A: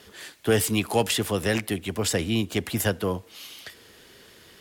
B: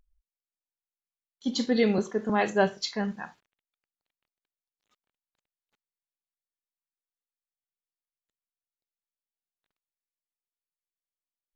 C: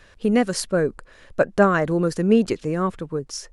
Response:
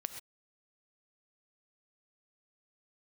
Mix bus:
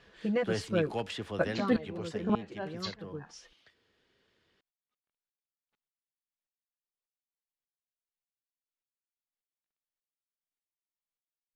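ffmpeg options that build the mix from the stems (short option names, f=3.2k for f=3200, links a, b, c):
-filter_complex "[0:a]volume=-12dB,afade=t=out:st=1.78:d=0.52:silence=0.375837[a];[1:a]aeval=exprs='val(0)*pow(10,-31*if(lt(mod(-1.7*n/s,1),2*abs(-1.7)/1000),1-mod(-1.7*n/s,1)/(2*abs(-1.7)/1000),(mod(-1.7*n/s,1)-2*abs(-1.7)/1000)/(1-2*abs(-1.7)/1000))/20)':c=same,volume=1dB,asplit=2[b][c];[2:a]highpass=49,aecho=1:1:6:0.88,volume=-12dB[d];[c]apad=whole_len=155681[e];[d][e]sidechaincompress=threshold=-37dB:ratio=10:attack=11:release=1020[f];[a][b][f]amix=inputs=3:normalize=0,lowpass=4.2k"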